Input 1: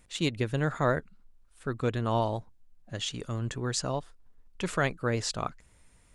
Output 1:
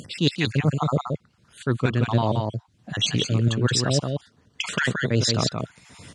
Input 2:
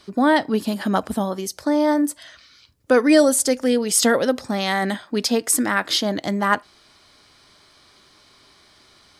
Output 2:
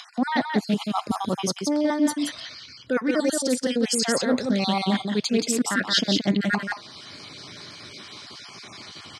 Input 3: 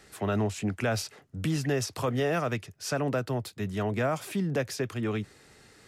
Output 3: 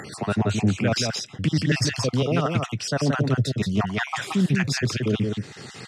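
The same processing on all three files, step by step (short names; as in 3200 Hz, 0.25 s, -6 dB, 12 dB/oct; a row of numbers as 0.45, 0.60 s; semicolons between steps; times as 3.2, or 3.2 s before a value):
random spectral dropouts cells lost 39%; LPF 5200 Hz 12 dB/oct; reverse; compressor 4:1, threshold -33 dBFS; reverse; high shelf 2500 Hz +10.5 dB; on a send: echo 0.175 s -4.5 dB; on the sum: upward compressor, threshold -41 dBFS; HPF 110 Hz 24 dB/oct; low shelf 280 Hz +11 dB; Doppler distortion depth 0.12 ms; match loudness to -24 LUFS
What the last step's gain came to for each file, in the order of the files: +8.5, +5.0, +7.5 dB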